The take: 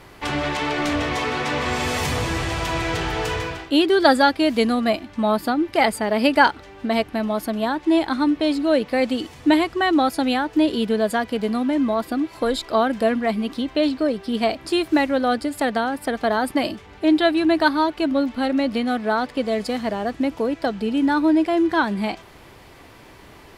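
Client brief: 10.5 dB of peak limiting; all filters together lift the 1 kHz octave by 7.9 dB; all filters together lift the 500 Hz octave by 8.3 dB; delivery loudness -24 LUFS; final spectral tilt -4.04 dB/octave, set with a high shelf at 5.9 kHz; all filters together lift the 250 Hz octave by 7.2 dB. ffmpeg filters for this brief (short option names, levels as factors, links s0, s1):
-af "equalizer=f=250:t=o:g=6,equalizer=f=500:t=o:g=7,equalizer=f=1000:t=o:g=7,highshelf=f=5900:g=6,volume=0.376,alimiter=limit=0.2:level=0:latency=1"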